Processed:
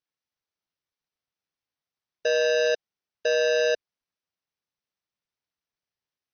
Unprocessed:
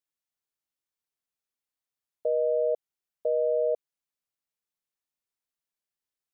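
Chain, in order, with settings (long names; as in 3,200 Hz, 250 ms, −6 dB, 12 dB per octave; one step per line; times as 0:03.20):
each half-wave held at its own peak
AC-3 48 kbit/s 44,100 Hz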